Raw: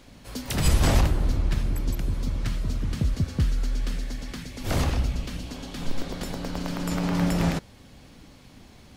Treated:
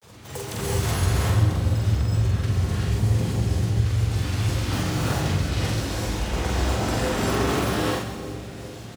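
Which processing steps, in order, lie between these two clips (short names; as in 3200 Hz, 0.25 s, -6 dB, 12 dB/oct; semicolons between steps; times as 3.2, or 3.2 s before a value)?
bell 160 Hz -13 dB 0.55 oct; reverse; compressor 6:1, threshold -30 dBFS, peak gain reduction 14.5 dB; reverse; grains, spray 23 ms, pitch spread up and down by 12 st; on a send: split-band echo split 590 Hz, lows 0.397 s, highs 0.131 s, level -10 dB; on the sum: non-linear reverb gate 0.41 s rising, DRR -5.5 dB; frequency shift +49 Hz; doubler 45 ms -2.5 dB; gain +3.5 dB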